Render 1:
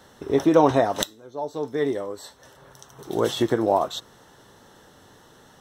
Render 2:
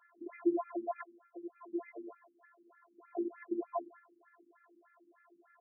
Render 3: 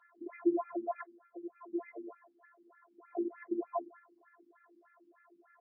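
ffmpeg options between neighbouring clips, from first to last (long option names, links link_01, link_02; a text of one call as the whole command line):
ffmpeg -i in.wav -af "acompressor=threshold=-21dB:ratio=4,afftfilt=real='hypot(re,im)*cos(PI*b)':imag='0':win_size=512:overlap=0.75,afftfilt=real='re*between(b*sr/1024,240*pow(1900/240,0.5+0.5*sin(2*PI*3.3*pts/sr))/1.41,240*pow(1900/240,0.5+0.5*sin(2*PI*3.3*pts/sr))*1.41)':imag='im*between(b*sr/1024,240*pow(1900/240,0.5+0.5*sin(2*PI*3.3*pts/sr))/1.41,240*pow(1900/240,0.5+0.5*sin(2*PI*3.3*pts/sr))*1.41)':win_size=1024:overlap=0.75,volume=-3.5dB" out.wav
ffmpeg -i in.wav -af "volume=1.5dB" -ar 16000 -c:a libmp3lame -b:a 16k out.mp3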